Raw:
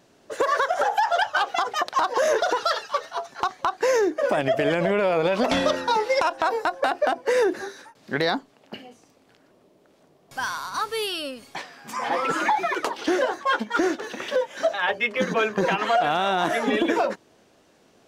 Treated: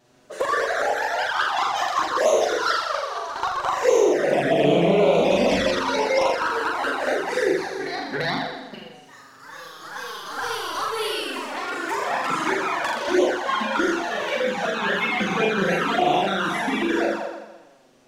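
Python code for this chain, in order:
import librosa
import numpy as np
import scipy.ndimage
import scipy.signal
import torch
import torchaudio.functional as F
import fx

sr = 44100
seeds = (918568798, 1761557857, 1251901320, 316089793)

y = fx.room_flutter(x, sr, wall_m=7.1, rt60_s=1.1)
y = fx.echo_pitch(y, sr, ms=119, semitones=1, count=3, db_per_echo=-6.0)
y = fx.env_flanger(y, sr, rest_ms=8.4, full_db=-12.5)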